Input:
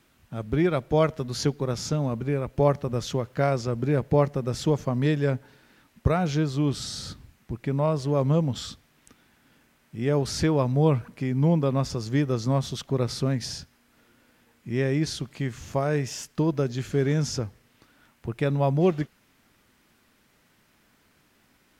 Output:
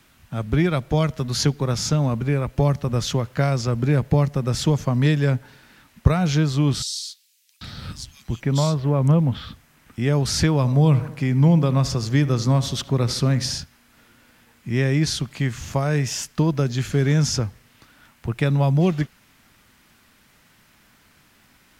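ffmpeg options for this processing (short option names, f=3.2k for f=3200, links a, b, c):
-filter_complex "[0:a]asettb=1/sr,asplit=3[a][b][c];[a]atrim=end=6.824[d];[b]atrim=start=6.82:end=9.98,asetpts=PTS-STARTPTS,afade=t=in:d=0.004:c=qsin,afade=t=out:st=3.156:d=0.004:c=qsin,acrossover=split=3100[e][f];[e]adelay=790[g];[g][f]amix=inputs=2:normalize=0,atrim=end_sample=139356[h];[c]atrim=start=9.976[i];[d][h]acrossfade=d=0.004:c1=hsin:c2=qsin[j];[j][i]acrossfade=d=0.004:c1=qsin:c2=hsin,asettb=1/sr,asplit=3[k][l][m];[k]atrim=end=10.564[n];[l]atrim=start=10.56:end=13.58,asetpts=PTS-STARTPTS,afade=t=in:d=0.004:c=qsin,afade=t=out:st=3.016:d=0.004:c=qsin,asplit=2[o][p];[p]adelay=76,lowpass=f=2k:p=1,volume=-15.5dB,asplit=2[q][r];[r]adelay=76,lowpass=f=2k:p=1,volume=0.52,asplit=2[s][t];[t]adelay=76,lowpass=f=2k:p=1,volume=0.52,asplit=2[u][v];[v]adelay=76,lowpass=f=2k:p=1,volume=0.52,asplit=2[w][x];[x]adelay=76,lowpass=f=2k:p=1,volume=0.52[y];[o][q][s][u][w][y]amix=inputs=6:normalize=0,atrim=end_sample=133182[z];[m]atrim=start=13.576[aa];[n][z]acrossfade=d=0.004:c1=hsin:c2=qsin[ab];[ab][aa]acrossfade=d=0.004:c1=qsin:c2=hsin,equalizer=f=400:w=0.89:g=-6,acrossover=split=270|3000[ac][ad][ae];[ad]acompressor=threshold=-30dB:ratio=6[af];[ac][af][ae]amix=inputs=3:normalize=0,volume=8dB"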